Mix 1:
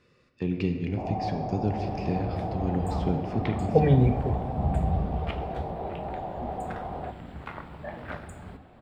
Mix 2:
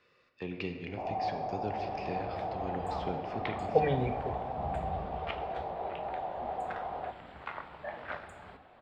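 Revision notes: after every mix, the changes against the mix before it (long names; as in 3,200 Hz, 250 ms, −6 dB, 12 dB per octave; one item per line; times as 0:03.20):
master: add three-way crossover with the lows and the highs turned down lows −14 dB, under 470 Hz, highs −13 dB, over 5,200 Hz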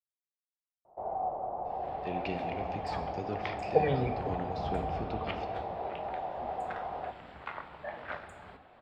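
speech: entry +1.65 s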